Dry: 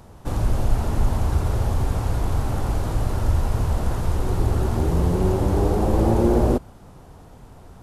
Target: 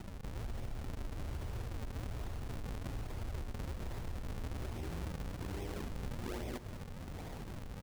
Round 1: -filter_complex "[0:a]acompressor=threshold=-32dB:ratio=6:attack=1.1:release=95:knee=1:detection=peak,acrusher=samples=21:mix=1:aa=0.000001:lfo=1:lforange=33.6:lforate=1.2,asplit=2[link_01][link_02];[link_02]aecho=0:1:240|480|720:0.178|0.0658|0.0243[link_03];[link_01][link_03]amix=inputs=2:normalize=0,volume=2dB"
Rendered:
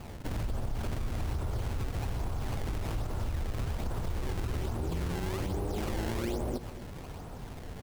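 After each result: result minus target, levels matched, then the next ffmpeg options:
downward compressor: peak gain reduction −8 dB; sample-and-hold swept by an LFO: distortion −7 dB
-filter_complex "[0:a]acompressor=threshold=-41.5dB:ratio=6:attack=1.1:release=95:knee=1:detection=peak,acrusher=samples=21:mix=1:aa=0.000001:lfo=1:lforange=33.6:lforate=1.2,asplit=2[link_01][link_02];[link_02]aecho=0:1:240|480|720:0.178|0.0658|0.0243[link_03];[link_01][link_03]amix=inputs=2:normalize=0,volume=2dB"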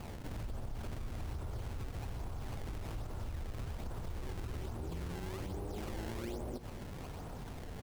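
sample-and-hold swept by an LFO: distortion −7 dB
-filter_complex "[0:a]acompressor=threshold=-41.5dB:ratio=6:attack=1.1:release=95:knee=1:detection=peak,acrusher=samples=76:mix=1:aa=0.000001:lfo=1:lforange=122:lforate=1.2,asplit=2[link_01][link_02];[link_02]aecho=0:1:240|480|720:0.178|0.0658|0.0243[link_03];[link_01][link_03]amix=inputs=2:normalize=0,volume=2dB"

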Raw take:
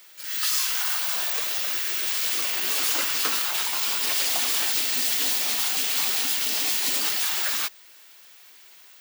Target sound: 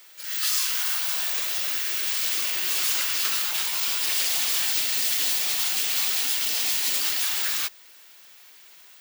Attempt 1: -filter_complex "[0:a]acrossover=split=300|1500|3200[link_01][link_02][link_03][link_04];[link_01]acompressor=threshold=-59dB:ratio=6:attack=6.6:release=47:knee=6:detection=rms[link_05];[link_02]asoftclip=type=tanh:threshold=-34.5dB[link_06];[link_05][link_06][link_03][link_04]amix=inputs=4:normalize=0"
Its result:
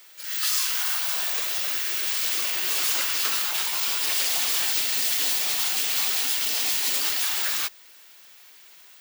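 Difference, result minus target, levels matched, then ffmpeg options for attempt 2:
soft clipping: distortion −6 dB
-filter_complex "[0:a]acrossover=split=300|1500|3200[link_01][link_02][link_03][link_04];[link_01]acompressor=threshold=-59dB:ratio=6:attack=6.6:release=47:knee=6:detection=rms[link_05];[link_02]asoftclip=type=tanh:threshold=-42dB[link_06];[link_05][link_06][link_03][link_04]amix=inputs=4:normalize=0"

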